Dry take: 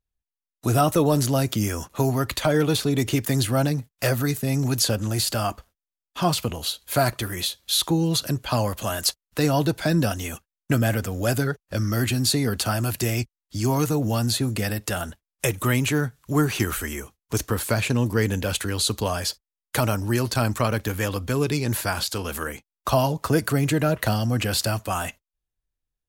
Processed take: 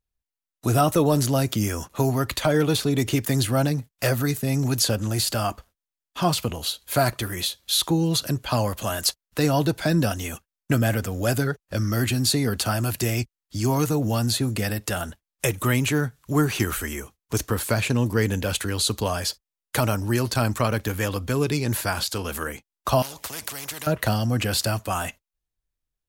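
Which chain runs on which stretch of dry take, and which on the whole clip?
23.02–23.87 s: high-pass 42 Hz + spectrum-flattening compressor 4:1
whole clip: none

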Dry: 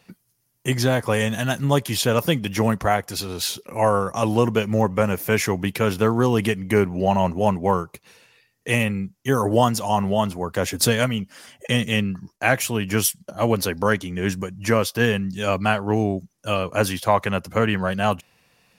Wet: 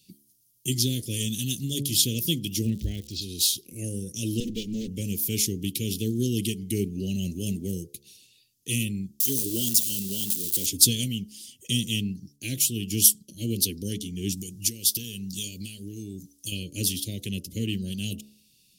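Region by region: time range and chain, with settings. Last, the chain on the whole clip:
2.64–3.21 s: Gaussian low-pass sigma 1.8 samples + peaking EQ 60 Hz +14.5 dB 0.61 oct + crackle 260 per s -37 dBFS
4.40–4.88 s: comb filter that takes the minimum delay 4.2 ms + peaking EQ 12 kHz -10.5 dB 0.92 oct
7.22–7.84 s: de-esser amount 35% + treble shelf 3.9 kHz +5.5 dB
9.20–10.66 s: zero-crossing glitches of -21 dBFS + high-pass 260 Hz 6 dB/octave
14.37–16.52 s: compression 16:1, threshold -25 dBFS + treble shelf 3.5 kHz +10 dB
whole clip: elliptic band-stop 340–3200 Hz, stop band 80 dB; treble shelf 3.2 kHz +11 dB; de-hum 70.86 Hz, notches 21; trim -4.5 dB

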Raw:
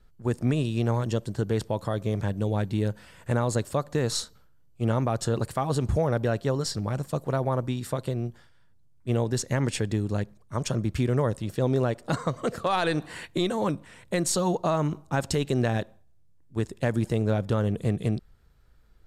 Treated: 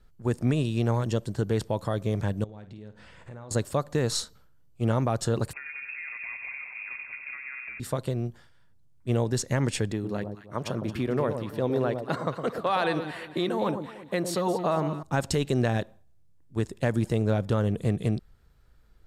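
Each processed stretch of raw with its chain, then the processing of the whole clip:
2.44–3.51 s: compression 5:1, threshold -42 dBFS + distance through air 82 m + flutter echo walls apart 8.9 m, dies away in 0.28 s
5.53–7.80 s: compression 12:1, threshold -36 dBFS + multi-head delay 94 ms, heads first and second, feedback 68%, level -9 dB + frequency inversion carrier 2.6 kHz
9.92–15.03 s: high-pass 230 Hz 6 dB/octave + peaking EQ 7.3 kHz -12 dB 0.96 oct + echo whose repeats swap between lows and highs 112 ms, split 990 Hz, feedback 54%, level -6.5 dB
whole clip: none

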